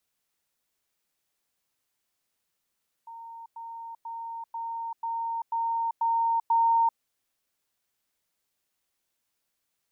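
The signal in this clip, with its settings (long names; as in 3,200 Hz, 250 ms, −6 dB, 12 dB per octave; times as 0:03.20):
level staircase 919 Hz −40 dBFS, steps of 3 dB, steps 8, 0.39 s 0.10 s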